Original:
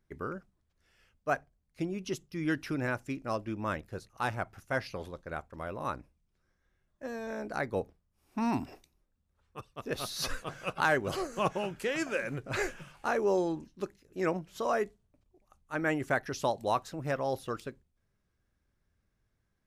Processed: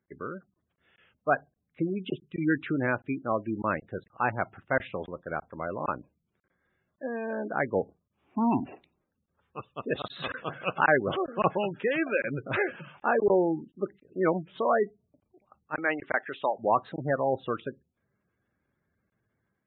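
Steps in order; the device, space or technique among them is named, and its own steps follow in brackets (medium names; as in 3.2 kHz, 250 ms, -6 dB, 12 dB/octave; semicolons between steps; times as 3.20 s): 15.75–16.59 s: high-pass 690 Hz 6 dB/octave; call with lost packets (high-pass 130 Hz 12 dB/octave; resampled via 8 kHz; level rider gain up to 5.5 dB; lost packets); spectral gate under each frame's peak -20 dB strong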